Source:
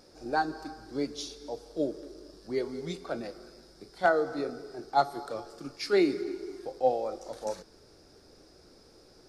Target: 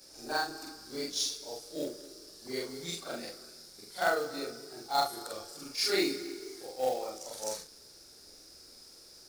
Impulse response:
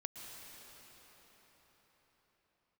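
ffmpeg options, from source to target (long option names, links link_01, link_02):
-af "afftfilt=real='re':imag='-im':win_size=4096:overlap=0.75,crystalizer=i=7.5:c=0,acrusher=bits=4:mode=log:mix=0:aa=0.000001,volume=-2.5dB"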